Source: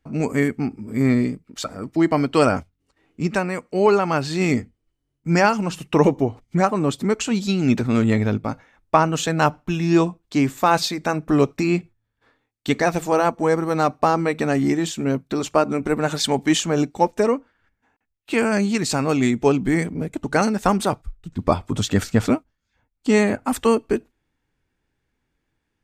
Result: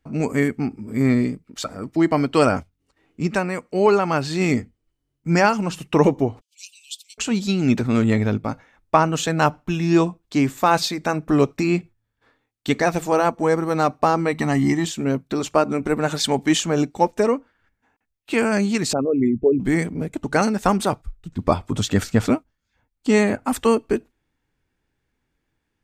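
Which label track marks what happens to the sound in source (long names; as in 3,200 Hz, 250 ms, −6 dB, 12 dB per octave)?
6.410000	7.180000	Butterworth high-pass 2,600 Hz 96 dB per octave
14.320000	14.850000	comb filter 1 ms
18.930000	19.600000	spectral envelope exaggerated exponent 3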